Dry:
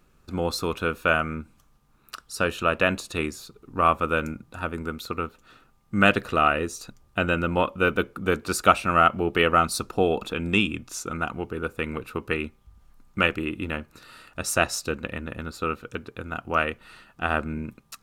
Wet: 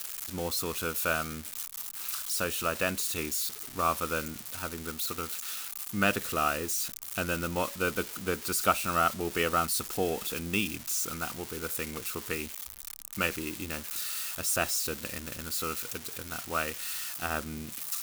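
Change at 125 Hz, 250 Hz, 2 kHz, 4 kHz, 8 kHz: -8.0, -8.0, -7.5, -3.0, +4.0 dB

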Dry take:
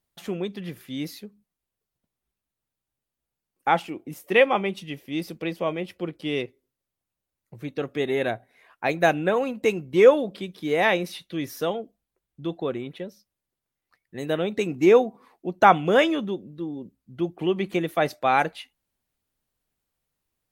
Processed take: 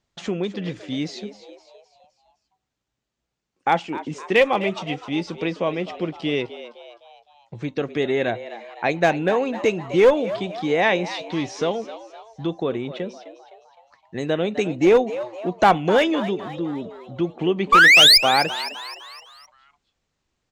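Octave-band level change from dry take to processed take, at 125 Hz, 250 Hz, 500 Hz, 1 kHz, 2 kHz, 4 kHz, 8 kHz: +3.5 dB, +3.0 dB, +1.5 dB, +2.5 dB, +8.0 dB, +15.5 dB, n/a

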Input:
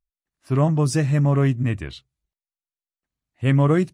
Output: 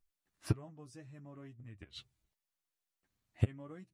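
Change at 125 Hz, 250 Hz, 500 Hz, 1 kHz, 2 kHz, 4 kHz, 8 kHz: -20.5, -23.5, -25.0, -27.0, -23.5, -15.5, -22.0 dB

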